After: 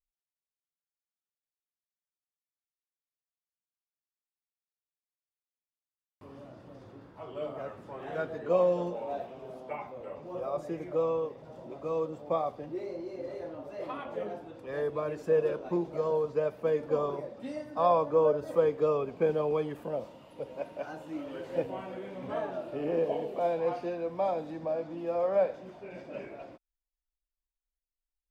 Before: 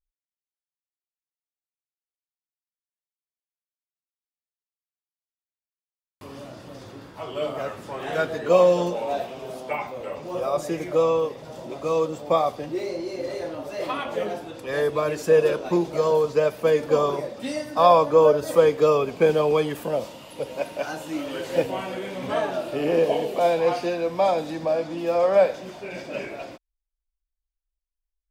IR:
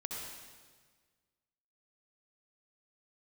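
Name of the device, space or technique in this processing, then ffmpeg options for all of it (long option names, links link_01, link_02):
through cloth: -af "highshelf=frequency=2600:gain=-15,volume=-8dB"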